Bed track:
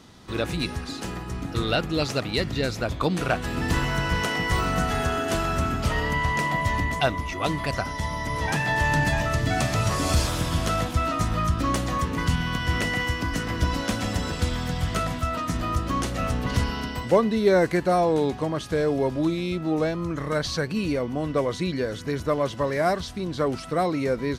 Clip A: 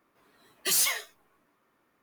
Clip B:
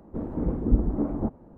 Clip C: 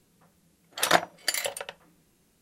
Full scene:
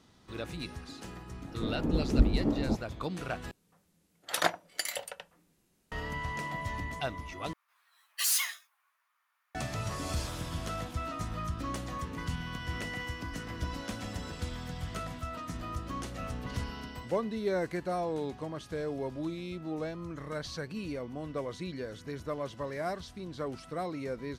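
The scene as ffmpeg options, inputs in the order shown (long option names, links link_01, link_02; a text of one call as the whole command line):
ffmpeg -i bed.wav -i cue0.wav -i cue1.wav -i cue2.wav -filter_complex "[0:a]volume=-12dB[link_01];[1:a]highpass=frequency=1000:width=0.5412,highpass=frequency=1000:width=1.3066[link_02];[link_01]asplit=3[link_03][link_04][link_05];[link_03]atrim=end=3.514[link_06];[3:a]atrim=end=2.41,asetpts=PTS-STARTPTS,volume=-6.5dB[link_07];[link_04]atrim=start=5.916:end=7.534[link_08];[link_02]atrim=end=2.02,asetpts=PTS-STARTPTS,volume=-3.5dB[link_09];[link_05]atrim=start=9.546[link_10];[2:a]atrim=end=1.57,asetpts=PTS-STARTPTS,volume=-2.5dB,afade=type=in:duration=0.004:curve=hsin,afade=type=out:start_time=1.566:duration=0.004:curve=hsin,adelay=1470[link_11];[link_06][link_07]acrossfade=duration=0.004:curve1=hsin:curve2=hsin[link_12];[link_12][link_08]acrossfade=duration=0.004:curve1=hsin:curve2=hsin[link_13];[link_13][link_09]acrossfade=duration=0.004:curve1=hsin:curve2=hsin[link_14];[link_14][link_10]acrossfade=duration=0.004:curve1=hsin:curve2=hsin[link_15];[link_15][link_11]amix=inputs=2:normalize=0" out.wav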